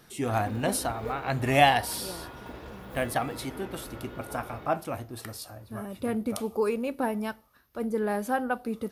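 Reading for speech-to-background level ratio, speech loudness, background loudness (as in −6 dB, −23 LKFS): 12.5 dB, −29.5 LKFS, −42.0 LKFS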